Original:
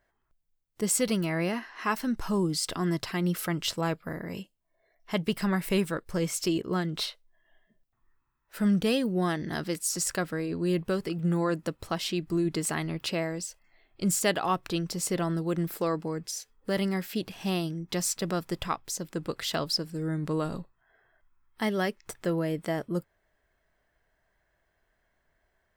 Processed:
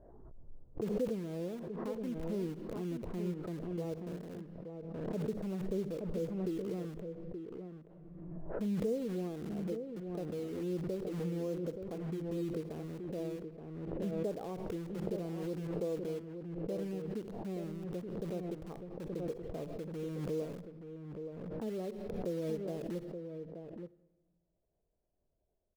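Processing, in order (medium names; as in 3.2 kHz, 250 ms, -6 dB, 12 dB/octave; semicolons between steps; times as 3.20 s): dynamic bell 470 Hz, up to +7 dB, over -48 dBFS, Q 4.8; four-pole ladder low-pass 680 Hz, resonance 25%; in parallel at -10 dB: integer overflow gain 38 dB; on the sum: echo from a far wall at 150 m, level -7 dB; on a send at -19.5 dB: reverberation RT60 1.2 s, pre-delay 42 ms; on the sum: swell ahead of each attack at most 31 dB/s; trim -6.5 dB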